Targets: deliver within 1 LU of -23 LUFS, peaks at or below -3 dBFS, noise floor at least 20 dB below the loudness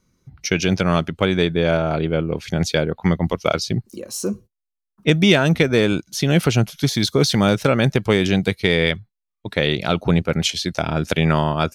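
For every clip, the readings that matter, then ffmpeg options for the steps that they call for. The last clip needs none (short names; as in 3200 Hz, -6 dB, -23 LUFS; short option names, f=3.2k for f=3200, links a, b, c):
loudness -19.5 LUFS; peak -2.5 dBFS; loudness target -23.0 LUFS
-> -af "volume=-3.5dB"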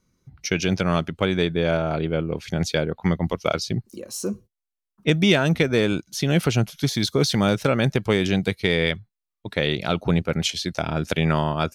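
loudness -23.0 LUFS; peak -6.0 dBFS; noise floor -85 dBFS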